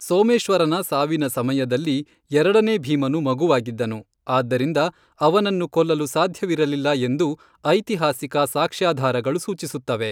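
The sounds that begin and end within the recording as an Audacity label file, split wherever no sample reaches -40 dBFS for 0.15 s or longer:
2.310000	4.020000	sound
4.270000	4.900000	sound
5.200000	7.420000	sound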